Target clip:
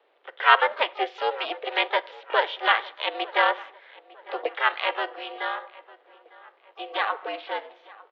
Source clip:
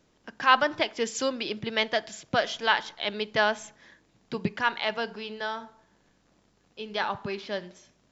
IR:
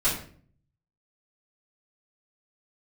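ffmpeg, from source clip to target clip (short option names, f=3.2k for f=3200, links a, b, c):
-filter_complex "[0:a]asplit=3[a][b][c];[b]asetrate=35002,aresample=44100,atempo=1.25992,volume=-17dB[d];[c]asetrate=88200,aresample=44100,atempo=0.5,volume=-15dB[e];[a][d][e]amix=inputs=3:normalize=0,aeval=exprs='val(0)*sin(2*PI*190*n/s)':c=same,asplit=2[f][g];[g]adelay=902,lowpass=f=2.6k:p=1,volume=-21dB,asplit=2[h][i];[i]adelay=902,lowpass=f=2.6k:p=1,volume=0.47,asplit=2[j][k];[k]adelay=902,lowpass=f=2.6k:p=1,volume=0.47[l];[h][j][l]amix=inputs=3:normalize=0[m];[f][m]amix=inputs=2:normalize=0,highpass=f=280:t=q:w=0.5412,highpass=f=280:t=q:w=1.307,lowpass=f=3.4k:t=q:w=0.5176,lowpass=f=3.4k:t=q:w=0.7071,lowpass=f=3.4k:t=q:w=1.932,afreqshift=110,volume=6dB"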